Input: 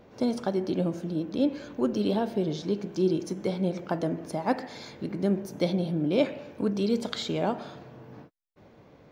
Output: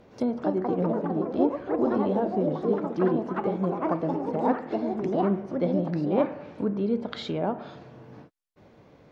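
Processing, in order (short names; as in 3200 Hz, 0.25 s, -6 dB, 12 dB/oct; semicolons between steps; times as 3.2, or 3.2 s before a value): echoes that change speed 0.275 s, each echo +4 st, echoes 3; treble ducked by the level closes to 1500 Hz, closed at -24.5 dBFS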